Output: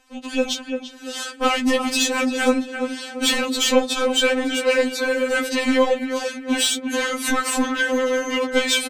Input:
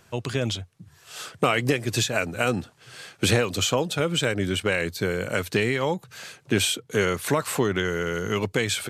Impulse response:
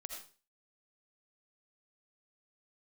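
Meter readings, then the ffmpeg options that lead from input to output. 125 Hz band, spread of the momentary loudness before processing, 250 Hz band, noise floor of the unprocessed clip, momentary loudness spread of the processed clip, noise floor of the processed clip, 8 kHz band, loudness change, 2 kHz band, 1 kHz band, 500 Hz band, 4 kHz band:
under -25 dB, 10 LU, +6.0 dB, -58 dBFS, 8 LU, -39 dBFS, +5.5 dB, +4.0 dB, +4.5 dB, +5.0 dB, +4.5 dB, +6.0 dB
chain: -filter_complex "[0:a]lowpass=10000,asplit=2[s0][s1];[s1]adelay=342,lowpass=f=2400:p=1,volume=0.316,asplit=2[s2][s3];[s3]adelay=342,lowpass=f=2400:p=1,volume=0.41,asplit=2[s4][s5];[s5]adelay=342,lowpass=f=2400:p=1,volume=0.41,asplit=2[s6][s7];[s7]adelay=342,lowpass=f=2400:p=1,volume=0.41[s8];[s2][s4][s6][s8]amix=inputs=4:normalize=0[s9];[s0][s9]amix=inputs=2:normalize=0,asoftclip=type=tanh:threshold=0.141,dynaudnorm=f=250:g=3:m=2.82,tremolo=f=53:d=0.667,asplit=2[s10][s11];[s11]asoftclip=type=hard:threshold=0.0841,volume=0.355[s12];[s10][s12]amix=inputs=2:normalize=0,afftfilt=real='re*3.46*eq(mod(b,12),0)':imag='im*3.46*eq(mod(b,12),0)':win_size=2048:overlap=0.75,volume=1.26"

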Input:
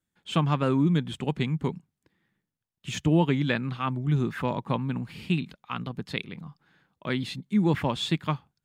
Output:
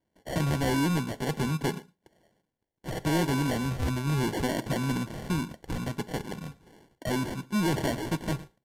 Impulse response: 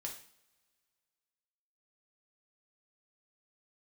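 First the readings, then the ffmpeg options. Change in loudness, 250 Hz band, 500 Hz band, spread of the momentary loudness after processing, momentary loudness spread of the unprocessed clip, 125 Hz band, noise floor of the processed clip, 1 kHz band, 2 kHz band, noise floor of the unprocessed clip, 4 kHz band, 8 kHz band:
-2.0 dB, -2.5 dB, -1.0 dB, 9 LU, 12 LU, -2.5 dB, -81 dBFS, -1.5 dB, 0.0 dB, under -85 dBFS, -2.5 dB, +7.0 dB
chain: -filter_complex "[0:a]acrossover=split=390[s0][s1];[s1]acompressor=threshold=0.0224:ratio=2[s2];[s0][s2]amix=inputs=2:normalize=0,aecho=1:1:114:0.0708,asoftclip=type=tanh:threshold=0.0944,asplit=2[s3][s4];[s4]highpass=f=720:p=1,volume=7.08,asoftclip=type=tanh:threshold=0.0944[s5];[s3][s5]amix=inputs=2:normalize=0,lowpass=f=1600:p=1,volume=0.501,acrusher=samples=35:mix=1:aa=0.000001,asplit=2[s6][s7];[1:a]atrim=start_sample=2205,atrim=end_sample=6615[s8];[s7][s8]afir=irnorm=-1:irlink=0,volume=0.335[s9];[s6][s9]amix=inputs=2:normalize=0,aresample=32000,aresample=44100"

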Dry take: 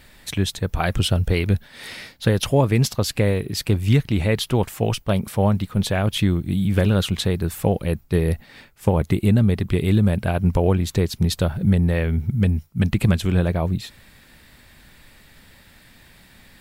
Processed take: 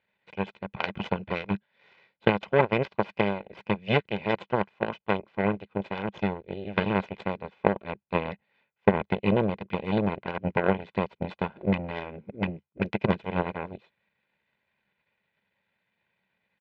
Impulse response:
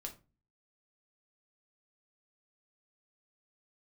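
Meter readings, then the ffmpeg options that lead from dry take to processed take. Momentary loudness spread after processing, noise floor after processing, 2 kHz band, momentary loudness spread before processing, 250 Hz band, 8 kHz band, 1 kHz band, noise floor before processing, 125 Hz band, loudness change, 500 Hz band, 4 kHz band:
10 LU, -80 dBFS, -1.5 dB, 6 LU, -8.0 dB, under -35 dB, 0.0 dB, -51 dBFS, -14.5 dB, -8.0 dB, -4.0 dB, -12.0 dB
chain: -af "aeval=exprs='0.562*(cos(1*acos(clip(val(0)/0.562,-1,1)))-cos(1*PI/2))+0.2*(cos(3*acos(clip(val(0)/0.562,-1,1)))-cos(3*PI/2))+0.0251*(cos(4*acos(clip(val(0)/0.562,-1,1)))-cos(4*PI/2))+0.00398*(cos(5*acos(clip(val(0)/0.562,-1,1)))-cos(5*PI/2))+0.00794*(cos(8*acos(clip(val(0)/0.562,-1,1)))-cos(8*PI/2))':c=same,highpass=180,equalizer=f=200:t=q:w=4:g=8,equalizer=f=290:t=q:w=4:g=-4,equalizer=f=770:t=q:w=4:g=8,equalizer=f=2400:t=q:w=4:g=6,lowpass=f=3300:w=0.5412,lowpass=f=3300:w=1.3066,aecho=1:1:2:0.52,volume=1.41"

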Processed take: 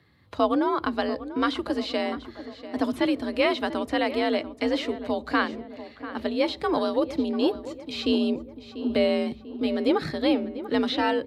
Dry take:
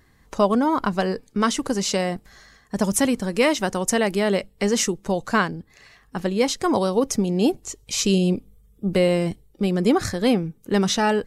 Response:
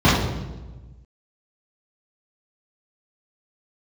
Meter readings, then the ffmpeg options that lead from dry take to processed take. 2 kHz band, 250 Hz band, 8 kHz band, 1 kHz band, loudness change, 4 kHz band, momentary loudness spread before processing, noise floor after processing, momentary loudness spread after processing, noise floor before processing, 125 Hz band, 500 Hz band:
-3.5 dB, -3.5 dB, under -25 dB, -3.5 dB, -4.0 dB, -3.0 dB, 8 LU, -47 dBFS, 11 LU, -57 dBFS, -17.5 dB, -3.5 dB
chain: -filter_complex "[0:a]asplit=2[s0][s1];[s1]adelay=692,lowpass=f=1800:p=1,volume=0.224,asplit=2[s2][s3];[s3]adelay=692,lowpass=f=1800:p=1,volume=0.54,asplit=2[s4][s5];[s5]adelay=692,lowpass=f=1800:p=1,volume=0.54,asplit=2[s6][s7];[s7]adelay=692,lowpass=f=1800:p=1,volume=0.54,asplit=2[s8][s9];[s9]adelay=692,lowpass=f=1800:p=1,volume=0.54,asplit=2[s10][s11];[s11]adelay=692,lowpass=f=1800:p=1,volume=0.54[s12];[s0][s2][s4][s6][s8][s10][s12]amix=inputs=7:normalize=0,asplit=2[s13][s14];[1:a]atrim=start_sample=2205,asetrate=83790,aresample=44100[s15];[s14][s15]afir=irnorm=-1:irlink=0,volume=0.00562[s16];[s13][s16]amix=inputs=2:normalize=0,afreqshift=55,acrossover=split=3500[s17][s18];[s18]acompressor=threshold=0.02:ratio=4:attack=1:release=60[s19];[s17][s19]amix=inputs=2:normalize=0,highshelf=f=5100:t=q:w=3:g=-8,volume=0.596"

